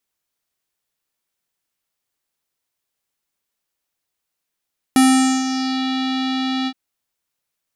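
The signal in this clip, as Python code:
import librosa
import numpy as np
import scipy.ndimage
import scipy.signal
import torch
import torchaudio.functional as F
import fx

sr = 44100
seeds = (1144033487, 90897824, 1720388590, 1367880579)

y = fx.sub_voice(sr, note=60, wave='square', cutoff_hz=3900.0, q=4.0, env_oct=1.5, env_s=0.86, attack_ms=1.4, decay_s=0.47, sustain_db=-11, release_s=0.06, note_s=1.71, slope=12)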